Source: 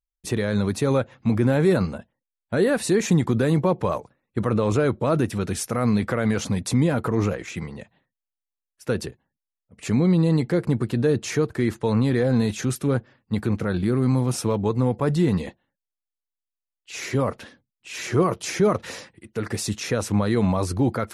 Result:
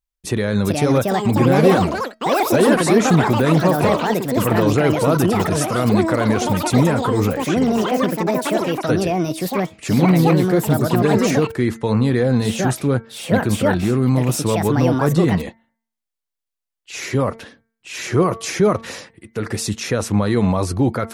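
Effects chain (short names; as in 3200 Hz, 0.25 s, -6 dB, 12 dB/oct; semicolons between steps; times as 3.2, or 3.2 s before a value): de-hum 226.2 Hz, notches 10; echoes that change speed 0.475 s, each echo +6 st, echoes 3; gain +4 dB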